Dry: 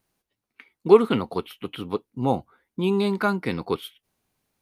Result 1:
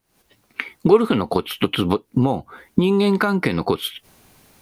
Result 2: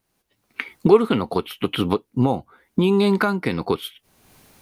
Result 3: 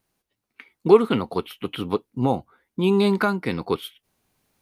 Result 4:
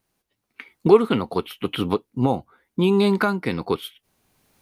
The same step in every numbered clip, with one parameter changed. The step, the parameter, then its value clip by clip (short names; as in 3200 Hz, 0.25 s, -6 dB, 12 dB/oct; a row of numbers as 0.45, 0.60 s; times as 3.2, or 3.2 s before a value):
recorder AGC, rising by: 89, 35, 5.6, 14 dB/s